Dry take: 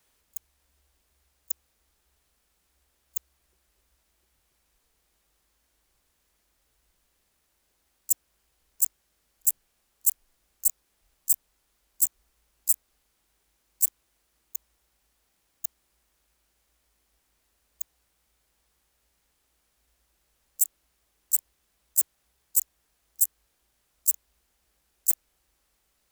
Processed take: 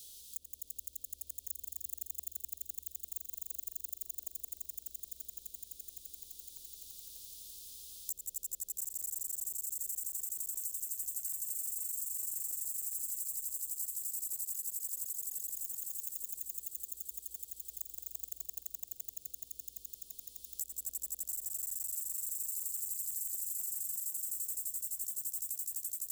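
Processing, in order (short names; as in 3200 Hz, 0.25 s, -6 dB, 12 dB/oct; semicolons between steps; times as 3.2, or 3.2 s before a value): compressor 1.5:1, threshold -53 dBFS, peak gain reduction 13 dB; Chebyshev band-stop 500–3400 Hz, order 3; on a send: swelling echo 85 ms, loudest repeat 8, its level -4 dB; on the sum: limiter -26 dBFS, peak gain reduction 10.5 dB; three-band squash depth 70%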